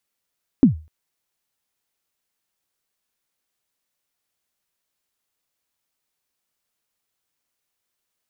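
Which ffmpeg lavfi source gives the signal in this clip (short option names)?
-f lavfi -i "aevalsrc='0.596*pow(10,-3*t/0.32)*sin(2*PI*(300*0.119/log(78/300)*(exp(log(78/300)*min(t,0.119)/0.119)-1)+78*max(t-0.119,0)))':d=0.25:s=44100"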